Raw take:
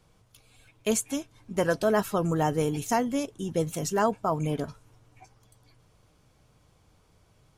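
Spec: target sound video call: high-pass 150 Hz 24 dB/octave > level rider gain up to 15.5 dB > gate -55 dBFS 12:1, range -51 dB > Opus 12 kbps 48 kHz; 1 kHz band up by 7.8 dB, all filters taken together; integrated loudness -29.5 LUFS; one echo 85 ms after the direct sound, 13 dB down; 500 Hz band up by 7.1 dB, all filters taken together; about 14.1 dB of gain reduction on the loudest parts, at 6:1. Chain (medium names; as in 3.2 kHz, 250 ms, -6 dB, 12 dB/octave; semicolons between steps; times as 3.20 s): peaking EQ 500 Hz +6.5 dB; peaking EQ 1 kHz +7.5 dB; compression 6:1, threshold -29 dBFS; high-pass 150 Hz 24 dB/octave; delay 85 ms -13 dB; level rider gain up to 15.5 dB; gate -55 dBFS 12:1, range -51 dB; trim +5 dB; Opus 12 kbps 48 kHz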